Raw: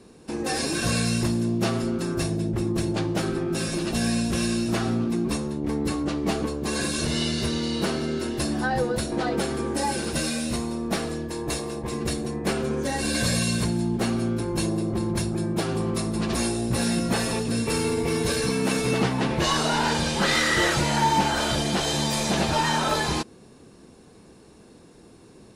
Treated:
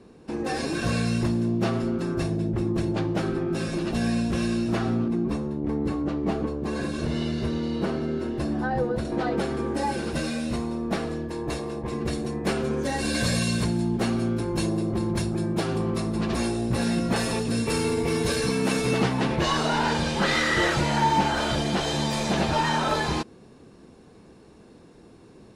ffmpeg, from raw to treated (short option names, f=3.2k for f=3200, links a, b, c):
-af "asetnsamples=n=441:p=0,asendcmd='5.08 lowpass f 1100;9.05 lowpass f 2400;12.13 lowpass f 6100;15.78 lowpass f 3400;17.16 lowpass f 8400;19.36 lowpass f 3600',lowpass=f=2.4k:p=1"